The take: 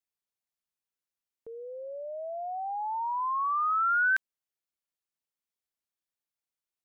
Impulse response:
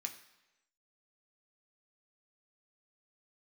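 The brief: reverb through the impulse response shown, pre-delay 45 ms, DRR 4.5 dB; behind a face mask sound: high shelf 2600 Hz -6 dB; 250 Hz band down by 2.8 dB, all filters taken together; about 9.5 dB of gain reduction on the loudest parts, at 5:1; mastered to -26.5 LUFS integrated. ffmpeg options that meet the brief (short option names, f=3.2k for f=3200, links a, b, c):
-filter_complex "[0:a]equalizer=f=250:t=o:g=-4,acompressor=threshold=-35dB:ratio=5,asplit=2[a][b];[1:a]atrim=start_sample=2205,adelay=45[c];[b][c]afir=irnorm=-1:irlink=0,volume=-2.5dB[d];[a][d]amix=inputs=2:normalize=0,highshelf=f=2.6k:g=-6,volume=10dB"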